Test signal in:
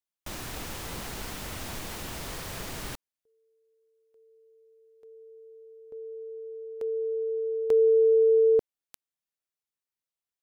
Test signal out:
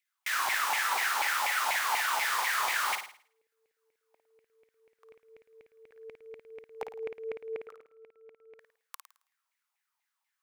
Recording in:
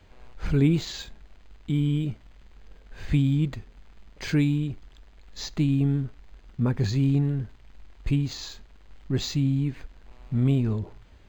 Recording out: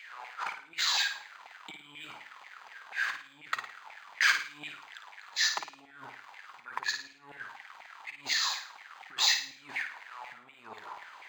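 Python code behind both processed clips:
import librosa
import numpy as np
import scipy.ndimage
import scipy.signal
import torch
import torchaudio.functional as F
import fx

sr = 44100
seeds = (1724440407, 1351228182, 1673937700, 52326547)

p1 = fx.over_compress(x, sr, threshold_db=-29.0, ratio=-0.5)
p2 = fx.filter_lfo_highpass(p1, sr, shape='saw_down', hz=4.1, low_hz=780.0, high_hz=2300.0, q=7.2)
y = p2 + fx.room_flutter(p2, sr, wall_m=9.3, rt60_s=0.46, dry=0)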